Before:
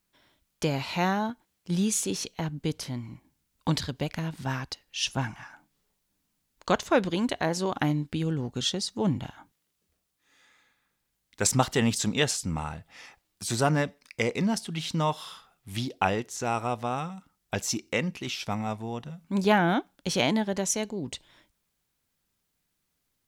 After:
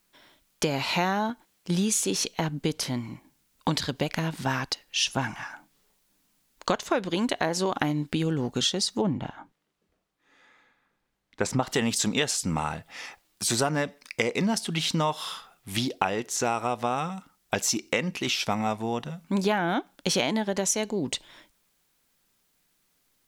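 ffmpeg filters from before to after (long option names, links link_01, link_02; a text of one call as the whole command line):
ffmpeg -i in.wav -filter_complex "[0:a]asettb=1/sr,asplit=3[link_01][link_02][link_03];[link_01]atrim=end=9.014[link_04];[link_02]atrim=start=9.01:end=11.67,asetpts=PTS-STARTPTS,afade=type=in:duration=0.004:curve=qsin,afade=type=out:start_time=2.656:duration=0.004:curve=qsin,lowpass=frequency=1300:poles=1[link_05];[link_03]atrim=start=11.666[link_06];[link_04][link_05]acrossfade=duration=0.004:curve1=hsin:curve2=qsin[link_07];[link_07][link_06]acrossfade=duration=0.004:curve1=qsin:curve2=hsin,equalizer=frequency=72:width=0.61:gain=-10,acompressor=threshold=-30dB:ratio=6,volume=8dB" out.wav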